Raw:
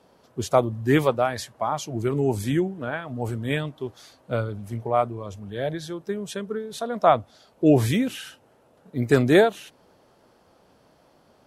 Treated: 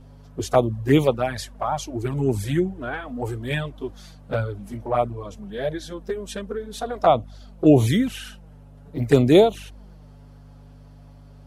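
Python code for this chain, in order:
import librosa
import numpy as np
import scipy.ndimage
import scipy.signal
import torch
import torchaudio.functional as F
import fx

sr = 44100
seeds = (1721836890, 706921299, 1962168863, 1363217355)

y = fx.add_hum(x, sr, base_hz=50, snr_db=19)
y = fx.env_flanger(y, sr, rest_ms=8.5, full_db=-15.5)
y = F.gain(torch.from_numpy(y), 3.5).numpy()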